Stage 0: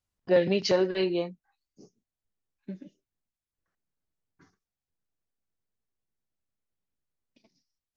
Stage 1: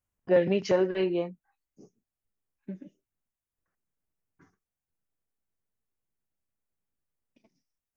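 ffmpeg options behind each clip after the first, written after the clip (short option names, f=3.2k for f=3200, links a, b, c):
-af "equalizer=f=4.3k:w=1.8:g=-13.5"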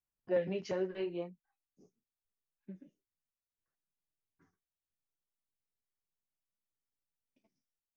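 -af "flanger=delay=4.7:depth=8.4:regen=-31:speed=0.76:shape=triangular,volume=-7dB"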